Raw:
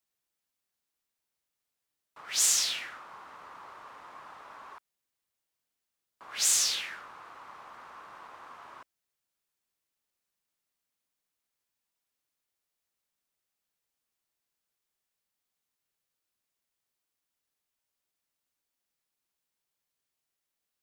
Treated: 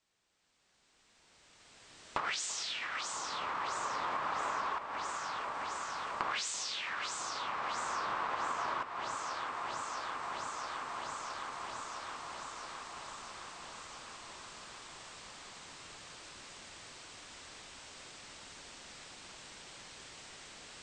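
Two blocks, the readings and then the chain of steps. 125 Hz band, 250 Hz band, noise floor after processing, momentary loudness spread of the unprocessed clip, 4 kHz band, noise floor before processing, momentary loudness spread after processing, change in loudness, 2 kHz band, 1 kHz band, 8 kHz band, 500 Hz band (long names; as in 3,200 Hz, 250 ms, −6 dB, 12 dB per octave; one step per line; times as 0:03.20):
can't be measured, +11.5 dB, −69 dBFS, 19 LU, −5.0 dB, below −85 dBFS, 14 LU, −13.5 dB, +5.0 dB, +12.5 dB, −11.0 dB, +12.0 dB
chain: camcorder AGC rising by 13 dB per second
on a send: delay that swaps between a low-pass and a high-pass 332 ms, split 1,100 Hz, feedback 84%, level −10.5 dB
on the sum: downward compressor 4 to 1, threshold −46 dBFS, peak gain reduction 20 dB
elliptic low-pass filter 8,300 Hz, stop band 40 dB
high-shelf EQ 5,700 Hz −7.5 dB
level +10.5 dB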